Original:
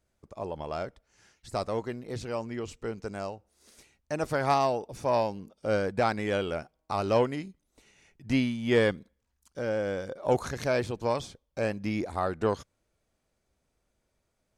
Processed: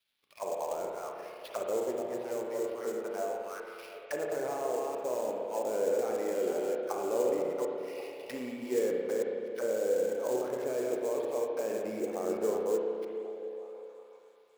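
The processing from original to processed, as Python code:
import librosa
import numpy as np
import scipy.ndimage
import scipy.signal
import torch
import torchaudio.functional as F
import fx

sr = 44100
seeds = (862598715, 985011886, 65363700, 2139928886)

p1 = fx.reverse_delay(x, sr, ms=225, wet_db=-6)
p2 = scipy.signal.sosfilt(scipy.signal.butter(2, 140.0, 'highpass', fs=sr, output='sos'), p1)
p3 = fx.peak_eq(p2, sr, hz=2700.0, db=12.0, octaves=1.7)
p4 = fx.over_compress(p3, sr, threshold_db=-29.0, ratio=-1.0)
p5 = p3 + (p4 * 10.0 ** (1.5 / 20.0))
p6 = fx.auto_wah(p5, sr, base_hz=430.0, top_hz=3700.0, q=3.3, full_db=-19.5, direction='down')
p7 = fx.sample_hold(p6, sr, seeds[0], rate_hz=7500.0, jitter_pct=20)
p8 = fx.echo_stepped(p7, sr, ms=363, hz=270.0, octaves=0.7, feedback_pct=70, wet_db=-10.0)
p9 = fx.rev_spring(p8, sr, rt60_s=2.3, pass_ms=(32, 54), chirp_ms=60, drr_db=0.0)
y = p9 * 10.0 ** (-6.5 / 20.0)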